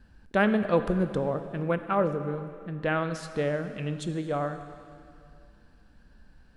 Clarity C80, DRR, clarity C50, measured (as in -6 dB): 11.0 dB, 9.0 dB, 10.0 dB